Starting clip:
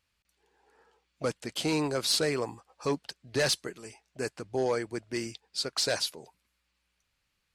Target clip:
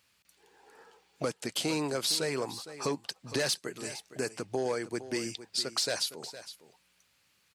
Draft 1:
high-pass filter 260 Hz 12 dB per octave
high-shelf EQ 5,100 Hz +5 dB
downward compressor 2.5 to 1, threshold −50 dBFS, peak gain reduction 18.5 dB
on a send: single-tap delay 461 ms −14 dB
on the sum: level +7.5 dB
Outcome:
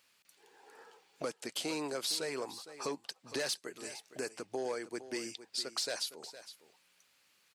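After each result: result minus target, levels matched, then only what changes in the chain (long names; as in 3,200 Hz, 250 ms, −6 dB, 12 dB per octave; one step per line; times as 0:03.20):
125 Hz band −8.5 dB; downward compressor: peak gain reduction +5.5 dB
change: high-pass filter 120 Hz 12 dB per octave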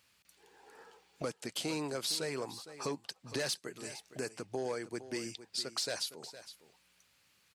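downward compressor: peak gain reduction +5.5 dB
change: downward compressor 2.5 to 1, threshold −41 dBFS, peak gain reduction 13 dB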